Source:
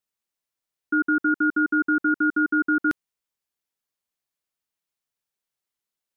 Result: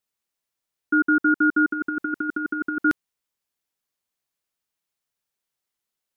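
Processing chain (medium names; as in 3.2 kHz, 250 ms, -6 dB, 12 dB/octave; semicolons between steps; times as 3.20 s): 1.71–2.84 s: compressor with a negative ratio -26 dBFS, ratio -0.5; trim +2.5 dB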